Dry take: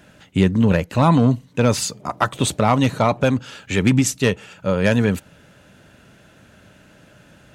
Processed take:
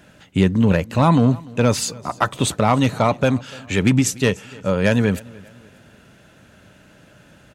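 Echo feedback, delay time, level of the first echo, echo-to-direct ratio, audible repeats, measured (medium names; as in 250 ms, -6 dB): 42%, 294 ms, -23.0 dB, -22.0 dB, 2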